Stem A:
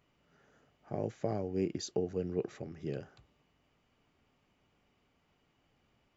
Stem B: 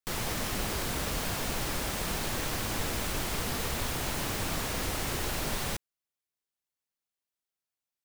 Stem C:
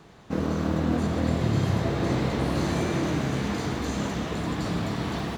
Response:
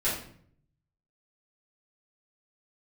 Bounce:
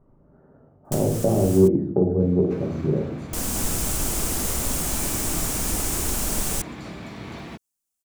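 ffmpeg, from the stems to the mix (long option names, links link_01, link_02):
-filter_complex "[0:a]lowpass=frequency=1100:width=0.5412,lowpass=frequency=1100:width=1.3066,lowshelf=frequency=470:gain=7.5,volume=-3dB,asplit=3[link_01][link_02][link_03];[link_02]volume=-6.5dB[link_04];[1:a]equalizer=frequency=125:width_type=o:width=1:gain=-9,equalizer=frequency=500:width_type=o:width=1:gain=-7,equalizer=frequency=1000:width_type=o:width=1:gain=-5,equalizer=frequency=2000:width_type=o:width=1:gain=-10,equalizer=frequency=4000:width_type=o:width=1:gain=-8,equalizer=frequency=8000:width_type=o:width=1:gain=6,adelay=850,volume=2dB,asplit=3[link_05][link_06][link_07];[link_05]atrim=end=1.68,asetpts=PTS-STARTPTS,afade=type=out:start_time=1.676:duration=0.004:curve=hsin[link_08];[link_06]atrim=start=1.68:end=3.33,asetpts=PTS-STARTPTS,volume=0[link_09];[link_07]atrim=start=3.33,asetpts=PTS-STARTPTS,afade=type=in:duration=0.004:curve=hsin[link_10];[link_08][link_09][link_10]concat=n=3:v=0:a=1[link_11];[2:a]equalizer=frequency=2300:width_type=o:width=0.26:gain=8,acompressor=threshold=-26dB:ratio=6,adelay=2200,volume=-14.5dB,asplit=2[link_12][link_13];[link_13]volume=-16dB[link_14];[link_03]apad=whole_len=392090[link_15];[link_11][link_15]sidechaincompress=threshold=-37dB:ratio=12:attack=36:release=1010[link_16];[3:a]atrim=start_sample=2205[link_17];[link_04][link_14]amix=inputs=2:normalize=0[link_18];[link_18][link_17]afir=irnorm=-1:irlink=0[link_19];[link_01][link_16][link_12][link_19]amix=inputs=4:normalize=0,acontrast=89"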